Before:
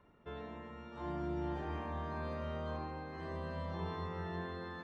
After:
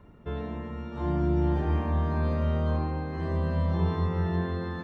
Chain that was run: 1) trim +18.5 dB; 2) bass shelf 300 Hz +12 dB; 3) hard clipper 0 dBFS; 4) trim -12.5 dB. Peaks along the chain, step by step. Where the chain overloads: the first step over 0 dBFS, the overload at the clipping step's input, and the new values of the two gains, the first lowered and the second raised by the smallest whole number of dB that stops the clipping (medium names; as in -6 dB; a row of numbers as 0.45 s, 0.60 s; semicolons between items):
-10.0 dBFS, -3.0 dBFS, -3.0 dBFS, -15.5 dBFS; nothing clips